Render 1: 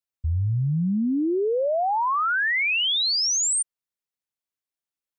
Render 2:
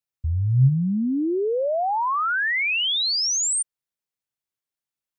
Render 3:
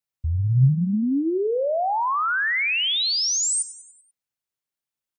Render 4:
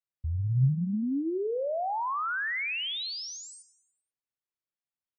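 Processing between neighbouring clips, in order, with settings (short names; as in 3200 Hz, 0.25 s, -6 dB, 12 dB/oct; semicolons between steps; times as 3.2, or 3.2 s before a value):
bell 130 Hz +10.5 dB 0.22 oct
frequency-shifting echo 97 ms, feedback 53%, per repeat +32 Hz, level -16 dB
air absorption 170 m; gain -7 dB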